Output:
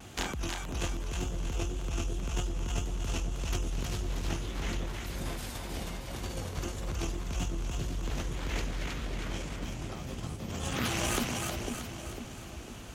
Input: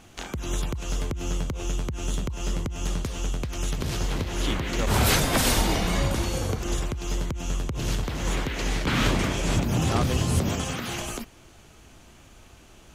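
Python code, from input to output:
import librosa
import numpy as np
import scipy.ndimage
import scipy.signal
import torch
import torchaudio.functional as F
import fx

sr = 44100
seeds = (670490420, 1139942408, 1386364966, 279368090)

y = scipy.signal.sosfilt(scipy.signal.butter(2, 48.0, 'highpass', fs=sr, output='sos'), x)
y = fx.low_shelf(y, sr, hz=66.0, db=7.0)
y = fx.over_compress(y, sr, threshold_db=-33.0, ratio=-1.0)
y = fx.tube_stage(y, sr, drive_db=16.0, bias=0.75)
y = fx.vibrato(y, sr, rate_hz=1.8, depth_cents=64.0)
y = fx.echo_split(y, sr, split_hz=640.0, low_ms=500, high_ms=316, feedback_pct=52, wet_db=-3.5)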